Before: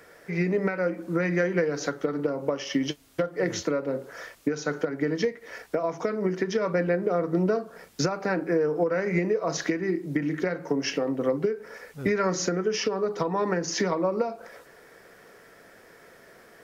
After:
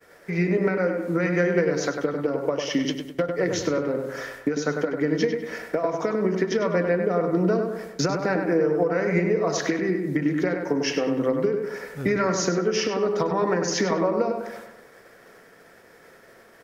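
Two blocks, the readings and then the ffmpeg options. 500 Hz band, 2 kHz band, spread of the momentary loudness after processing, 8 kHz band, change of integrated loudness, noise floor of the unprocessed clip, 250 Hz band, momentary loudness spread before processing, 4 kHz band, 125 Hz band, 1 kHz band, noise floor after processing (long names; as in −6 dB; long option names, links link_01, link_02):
+3.0 dB, +3.0 dB, 6 LU, can't be measured, +3.0 dB, −53 dBFS, +3.5 dB, 6 LU, +3.0 dB, +3.0 dB, +3.0 dB, −52 dBFS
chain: -filter_complex "[0:a]agate=range=-33dB:threshold=-46dB:ratio=3:detection=peak,asplit=2[link_01][link_02];[link_02]acompressor=threshold=-36dB:ratio=6,volume=-1dB[link_03];[link_01][link_03]amix=inputs=2:normalize=0,asplit=2[link_04][link_05];[link_05]adelay=99,lowpass=frequency=2700:poles=1,volume=-5dB,asplit=2[link_06][link_07];[link_07]adelay=99,lowpass=frequency=2700:poles=1,volume=0.51,asplit=2[link_08][link_09];[link_09]adelay=99,lowpass=frequency=2700:poles=1,volume=0.51,asplit=2[link_10][link_11];[link_11]adelay=99,lowpass=frequency=2700:poles=1,volume=0.51,asplit=2[link_12][link_13];[link_13]adelay=99,lowpass=frequency=2700:poles=1,volume=0.51,asplit=2[link_14][link_15];[link_15]adelay=99,lowpass=frequency=2700:poles=1,volume=0.51[link_16];[link_04][link_06][link_08][link_10][link_12][link_14][link_16]amix=inputs=7:normalize=0"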